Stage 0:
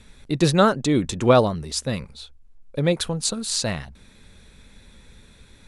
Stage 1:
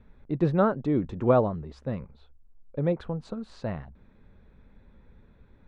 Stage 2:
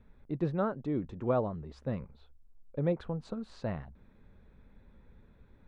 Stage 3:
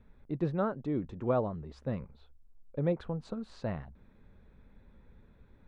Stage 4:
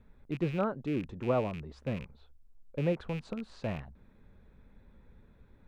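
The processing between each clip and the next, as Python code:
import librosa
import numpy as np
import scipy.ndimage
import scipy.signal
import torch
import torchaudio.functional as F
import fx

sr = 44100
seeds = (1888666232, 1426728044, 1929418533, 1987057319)

y1 = scipy.signal.sosfilt(scipy.signal.butter(2, 1200.0, 'lowpass', fs=sr, output='sos'), x)
y1 = y1 * librosa.db_to_amplitude(-5.0)
y2 = fx.rider(y1, sr, range_db=3, speed_s=0.5)
y2 = y2 * librosa.db_to_amplitude(-6.0)
y3 = y2
y4 = fx.rattle_buzz(y3, sr, strikes_db=-39.0, level_db=-35.0)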